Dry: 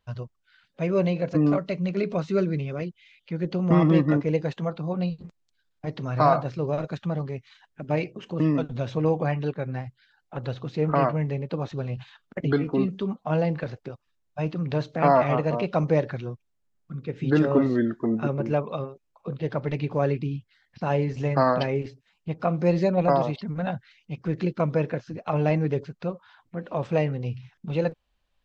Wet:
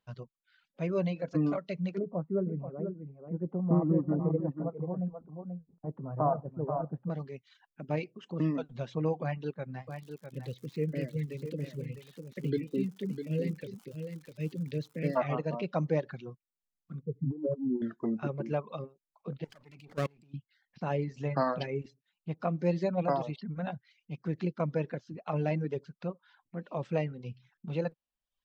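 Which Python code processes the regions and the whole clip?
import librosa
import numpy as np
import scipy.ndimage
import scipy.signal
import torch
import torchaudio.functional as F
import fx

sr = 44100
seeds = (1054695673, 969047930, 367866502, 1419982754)

y = fx.chain(x, sr, fx.lowpass(hz=1000.0, slope=24),
    fx.echo_single(ms=485, db=-7.0), at=(1.98, 7.1))
y = fx.ellip_bandstop(y, sr, low_hz=510.0, high_hz=1900.0, order=3, stop_db=40, at=(9.87, 15.15), fade=0.02)
y = fx.dmg_crackle(y, sr, seeds[0], per_s=150.0, level_db=-35.0, at=(9.87, 15.15), fade=0.02)
y = fx.echo_single(y, sr, ms=653, db=-8.0, at=(9.87, 15.15), fade=0.02)
y = fx.chain(y, sr, fx.spec_expand(power=2.6),
    fx.lowpass(hz=1000.0, slope=24),
    fx.over_compress(threshold_db=-24.0, ratio=-0.5), at=(17.01, 17.82))
y = fx.chain(y, sr, fx.lower_of_two(delay_ms=0.4),
    fx.high_shelf(hz=2700.0, db=11.5),
    fx.level_steps(step_db=22), at=(19.44, 20.34))
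y = fx.low_shelf_res(y, sr, hz=110.0, db=-9.0, q=1.5)
y = fx.dereverb_blind(y, sr, rt60_s=0.74)
y = y * 10.0 ** (-7.5 / 20.0)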